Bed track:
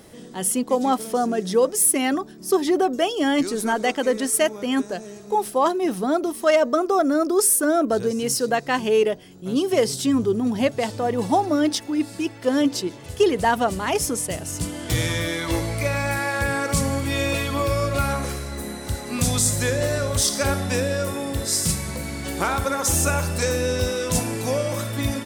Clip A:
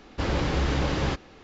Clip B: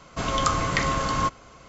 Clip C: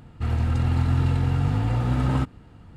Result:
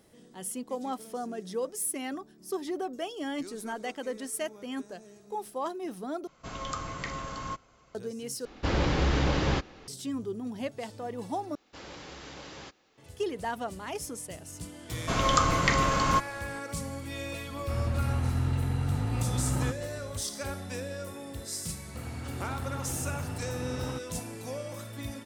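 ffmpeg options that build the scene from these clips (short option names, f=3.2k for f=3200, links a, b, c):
-filter_complex "[2:a]asplit=2[a][b];[1:a]asplit=2[c][d];[3:a]asplit=2[e][f];[0:a]volume=-14dB[g];[d]aemphasis=mode=production:type=bsi[h];[f]highpass=f=180:p=1[i];[g]asplit=4[j][k][l][m];[j]atrim=end=6.274[n];[a]atrim=end=1.68,asetpts=PTS-STARTPTS,volume=-12.5dB[o];[k]atrim=start=7.946:end=8.454[p];[c]atrim=end=1.43,asetpts=PTS-STARTPTS,volume=-0.5dB[q];[l]atrim=start=9.876:end=11.554[r];[h]atrim=end=1.43,asetpts=PTS-STARTPTS,volume=-16dB[s];[m]atrim=start=12.976[t];[b]atrim=end=1.68,asetpts=PTS-STARTPTS,volume=-0.5dB,afade=t=in:d=0.004:c=hsin,afade=t=out:st=1.676:d=0.004:c=hsin,adelay=14910[u];[e]atrim=end=2.76,asetpts=PTS-STARTPTS,volume=-7dB,afade=t=in:d=0.004:c=hsin,afade=t=out:st=2.756:d=0.004:c=hsin,adelay=17470[v];[i]atrim=end=2.76,asetpts=PTS-STARTPTS,volume=-10.5dB,afade=t=in:d=0.004:c=hsin,afade=t=out:st=2.756:d=0.004:c=hsin,adelay=21740[w];[n][o]acrossfade=d=0.004:c1=hsin:c2=hsin[x];[x][p]acrossfade=d=0.004:c1=hsin:c2=hsin[y];[y][q]acrossfade=d=0.004:c1=hsin:c2=hsin[z];[z][r]acrossfade=d=0.004:c1=hsin:c2=hsin[aa];[aa][s]acrossfade=d=0.004:c1=hsin:c2=hsin[ab];[ab][t]acrossfade=d=0.004:c1=hsin:c2=hsin[ac];[ac][u][v][w]amix=inputs=4:normalize=0"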